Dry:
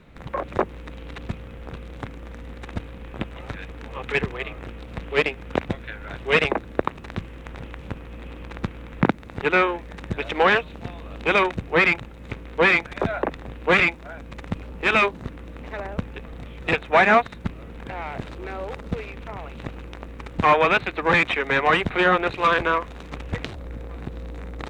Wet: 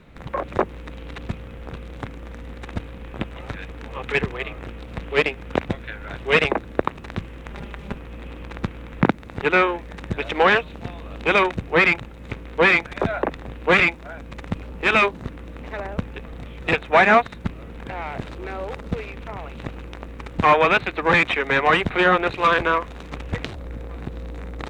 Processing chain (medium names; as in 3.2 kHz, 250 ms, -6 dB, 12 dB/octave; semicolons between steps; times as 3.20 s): 7.50–7.96 s: comb 5 ms, depth 59%; trim +1.5 dB